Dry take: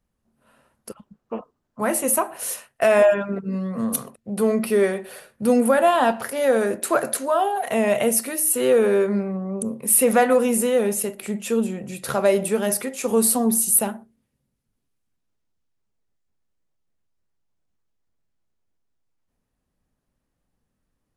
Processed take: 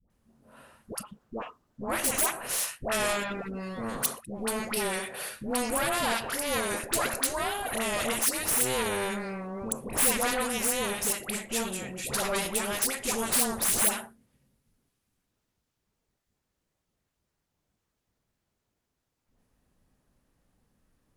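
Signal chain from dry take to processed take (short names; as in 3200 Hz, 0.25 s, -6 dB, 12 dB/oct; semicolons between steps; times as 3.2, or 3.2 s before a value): added harmonics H 4 -14 dB, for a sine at -2.5 dBFS; dispersion highs, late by 0.102 s, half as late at 770 Hz; spectral compressor 2:1; gain -8 dB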